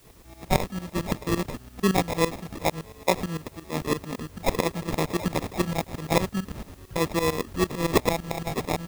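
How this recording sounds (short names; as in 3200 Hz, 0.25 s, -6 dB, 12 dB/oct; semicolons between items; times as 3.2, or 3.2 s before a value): aliases and images of a low sample rate 1500 Hz, jitter 0%; tremolo saw up 8.9 Hz, depth 90%; a quantiser's noise floor 10-bit, dither triangular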